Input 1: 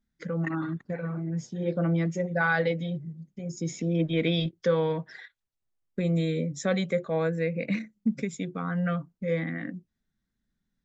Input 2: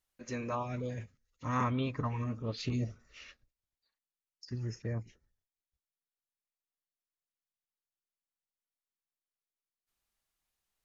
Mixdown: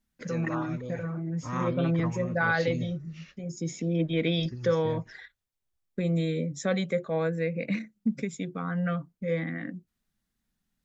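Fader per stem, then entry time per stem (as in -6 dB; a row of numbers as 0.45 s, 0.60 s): -1.0 dB, -1.0 dB; 0.00 s, 0.00 s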